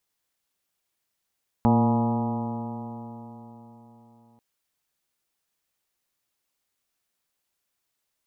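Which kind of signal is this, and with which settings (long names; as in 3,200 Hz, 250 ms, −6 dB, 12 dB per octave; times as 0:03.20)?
stiff-string partials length 2.74 s, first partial 115 Hz, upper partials 4/−10.5/−8/−9/−9/−3/−7/−20/−19.5 dB, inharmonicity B 0.0016, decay 4.04 s, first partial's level −21.5 dB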